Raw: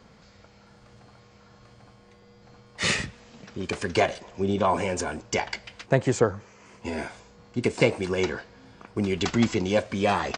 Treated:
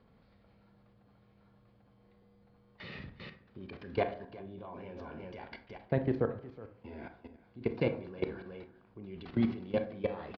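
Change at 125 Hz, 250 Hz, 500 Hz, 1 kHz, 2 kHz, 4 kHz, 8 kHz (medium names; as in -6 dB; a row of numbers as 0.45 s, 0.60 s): -9.5 dB, -9.0 dB, -10.0 dB, -15.5 dB, -16.5 dB, -20.0 dB, under -40 dB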